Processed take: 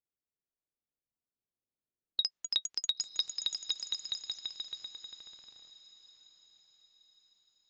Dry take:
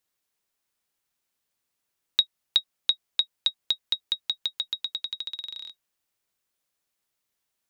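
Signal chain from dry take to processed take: echoes that change speed 0.608 s, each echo +5 st, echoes 3; low-pass opened by the level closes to 460 Hz, open at -23 dBFS; on a send: diffused feedback echo 0.985 s, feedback 40%, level -15 dB; on the sum: gain -8.5 dB; AAC 48 kbps 16000 Hz

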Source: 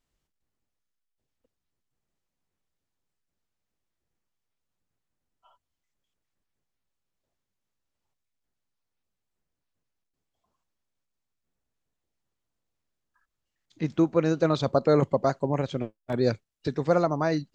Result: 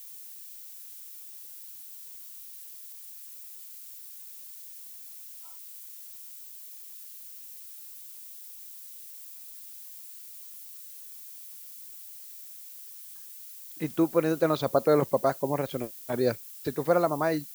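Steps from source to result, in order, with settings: tone controls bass -7 dB, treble -5 dB; added noise violet -45 dBFS

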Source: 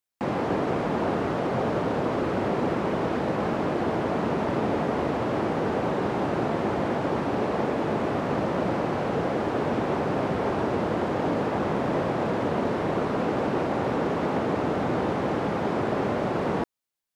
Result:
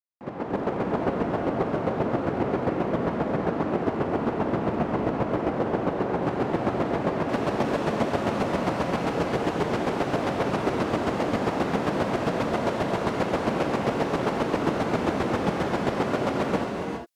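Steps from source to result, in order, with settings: opening faded in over 0.63 s; high shelf 3000 Hz -11 dB, from 6.23 s -3.5 dB, from 7.29 s +7 dB; one-sided clip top -21.5 dBFS; chopper 7.5 Hz, depth 60%, duty 20%; non-linear reverb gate 0.43 s rising, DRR 2.5 dB; gain +3.5 dB

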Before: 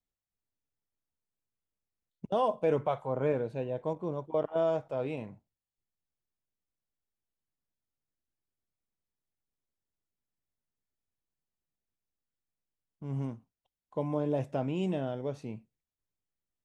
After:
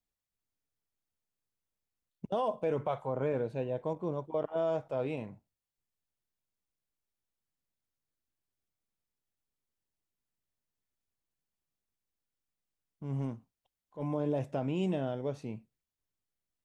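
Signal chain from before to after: limiter -22.5 dBFS, peak gain reduction 5 dB; 13.15–14.04 transient shaper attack -11 dB, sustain +1 dB

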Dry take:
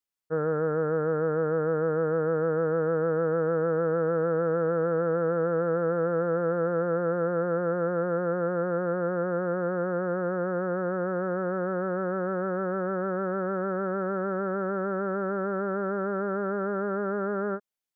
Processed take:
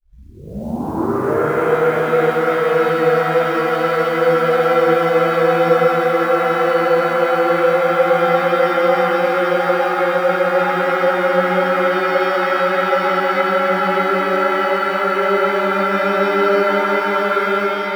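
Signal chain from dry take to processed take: tape start at the beginning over 1.33 s; AGC gain up to 16 dB; tilt +3 dB/oct; short-mantissa float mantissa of 4-bit; shimmer reverb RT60 3.9 s, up +7 st, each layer -8 dB, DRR -11 dB; gain -13 dB

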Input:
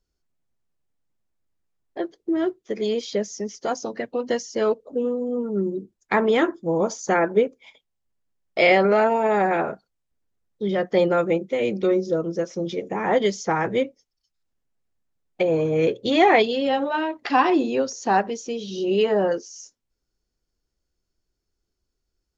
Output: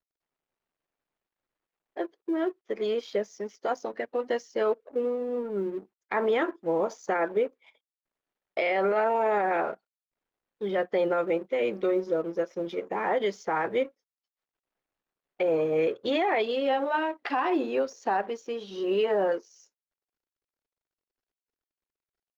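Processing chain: G.711 law mismatch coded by A; tone controls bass -14 dB, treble -14 dB; limiter -16.5 dBFS, peak gain reduction 11 dB; gain -1 dB

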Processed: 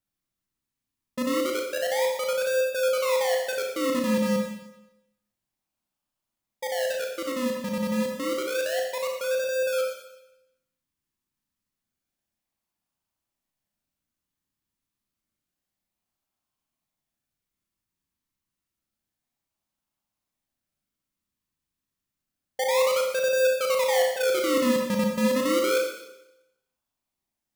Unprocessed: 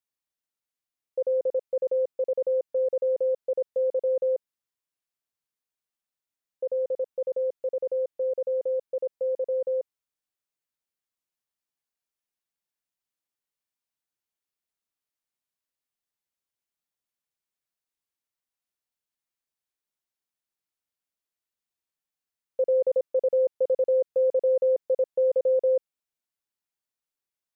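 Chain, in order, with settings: in parallel at -3 dB: decimation with a swept rate 41×, swing 100% 0.29 Hz; on the sum: bell 460 Hz -12 dB 0.57 oct; Schroeder reverb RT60 0.88 s, combs from 29 ms, DRR 0.5 dB

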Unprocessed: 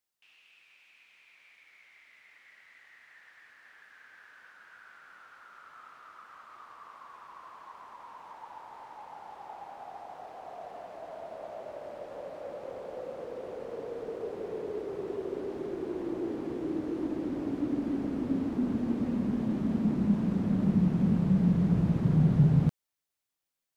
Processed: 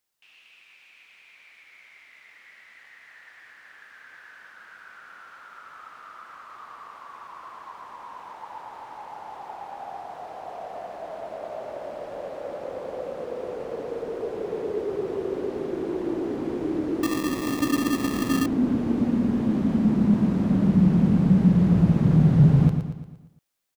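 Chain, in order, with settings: on a send: feedback echo 0.116 s, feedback 49%, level -7.5 dB; 17.03–18.46 on the sum: sample-rate reducer 1500 Hz, jitter 0%; gain +6 dB

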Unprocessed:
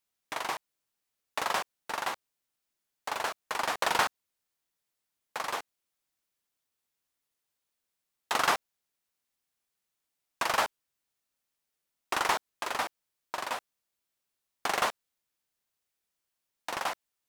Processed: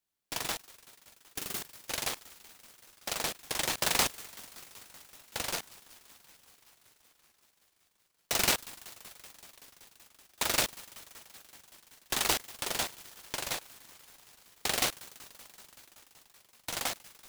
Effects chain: spectral delete 0.75–1.62, 440–1700 Hz; thin delay 0.19 s, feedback 83%, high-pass 2000 Hz, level -14.5 dB; noise-modulated delay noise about 2700 Hz, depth 0.26 ms; gain -1 dB

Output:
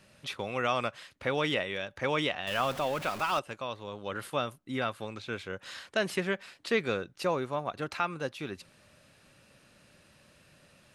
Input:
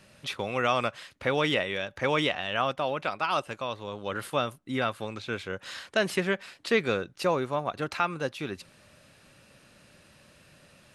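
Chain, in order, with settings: 2.47–3.39 zero-crossing step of -32.5 dBFS; gain -3.5 dB

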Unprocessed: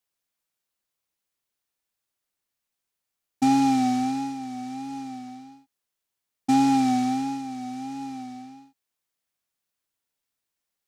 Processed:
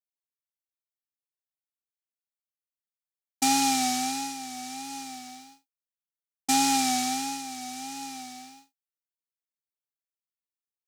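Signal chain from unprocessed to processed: expander -42 dBFS; tilt +4.5 dB/oct

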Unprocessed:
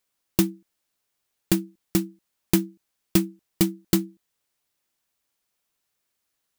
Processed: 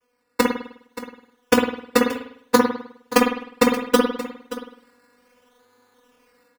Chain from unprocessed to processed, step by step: LPF 3200 Hz 12 dB/oct; AGC gain up to 12.5 dB; in parallel at +2.5 dB: limiter -9.5 dBFS, peak gain reduction 8 dB; on the sum: vocoder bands 32, saw 246 Hz; fixed phaser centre 670 Hz, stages 6; decimation with a swept rate 11×, swing 60% 0.65 Hz; echo 0.577 s -15 dB; on a send at -2 dB: reverb, pre-delay 51 ms; on the sum: gain -1 dB

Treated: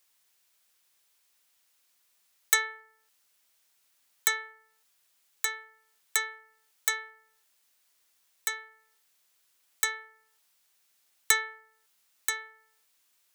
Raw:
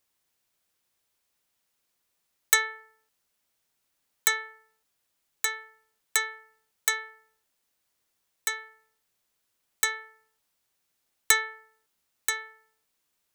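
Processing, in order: low shelf 200 Hz -5 dB; mismatched tape noise reduction encoder only; gain -2.5 dB

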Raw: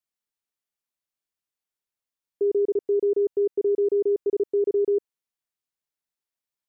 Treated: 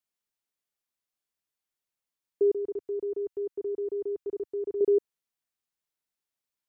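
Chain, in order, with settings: 2.52–4.81 ten-band EQ 125 Hz -7 dB, 250 Hz -6 dB, 500 Hz -10 dB

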